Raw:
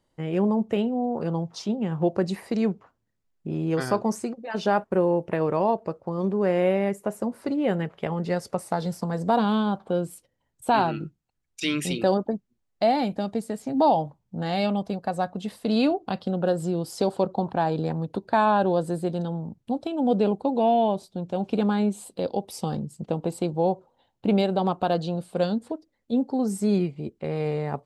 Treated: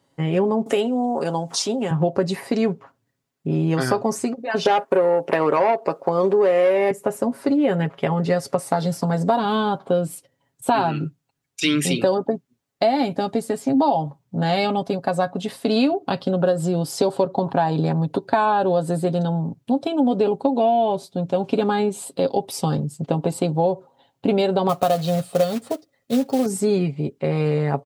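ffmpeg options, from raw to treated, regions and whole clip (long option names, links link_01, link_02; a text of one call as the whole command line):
ffmpeg -i in.wav -filter_complex "[0:a]asettb=1/sr,asplit=3[link_01][link_02][link_03];[link_01]atrim=end=0.664[link_04];[link_02]atrim=start=0.66:end=1.91,asetpts=PTS-STARTPTS,afade=type=in:duration=0.004:curve=qsin,afade=type=out:start_time=1.246:duration=0.004:curve=qsin,highpass=280,equalizer=frequency=8900:width_type=o:width=1.2:gain=14.5,acompressor=mode=upward:threshold=-29dB:ratio=2.5:attack=3.2:release=140:knee=2.83:detection=peak[link_05];[link_03]atrim=start=1.906[link_06];[link_04][link_05]acrossfade=duration=0.004:curve1=hsin:curve2=qsin[link_07];[link_07][link_06]acrossfade=duration=0.004:curve1=qsin:curve2=hsin,asettb=1/sr,asplit=3[link_08][link_09][link_10];[link_08]atrim=end=4.654[link_11];[link_09]atrim=start=4.65:end=6.91,asetpts=PTS-STARTPTS,afade=type=in:duration=0.004:curve=qsin,afade=type=out:start_time=2.256:duration=0.004:curve=qsin,highpass=330,aeval=exprs='0.282*sin(PI/2*1.58*val(0)/0.282)':channel_layout=same[link_12];[link_10]atrim=start=6.906[link_13];[link_11][link_12]acrossfade=duration=0.004:curve1=hsin:curve2=qsin[link_14];[link_14][link_13]acrossfade=duration=0.004:curve1=qsin:curve2=hsin,asettb=1/sr,asplit=3[link_15][link_16][link_17];[link_15]atrim=end=24.694[link_18];[link_16]atrim=start=24.69:end=26.46,asetpts=PTS-STARTPTS,afade=type=in:duration=0.004:curve=qsin,afade=type=out:start_time=1.766:duration=0.004:curve=qsin,aecho=1:1:1.6:0.46,atrim=end_sample=78057,acrusher=bits=4:mode=log:mix=0:aa=0.000001[link_19];[link_17]atrim=start=26.456[link_20];[link_18][link_19]acrossfade=duration=0.004:curve1=hsin:curve2=qsin[link_21];[link_21][link_20]acrossfade=duration=0.004:curve1=qsin:curve2=hsin,highpass=100,aecho=1:1:7.3:0.55,acompressor=threshold=-22dB:ratio=6,volume=7dB" out.wav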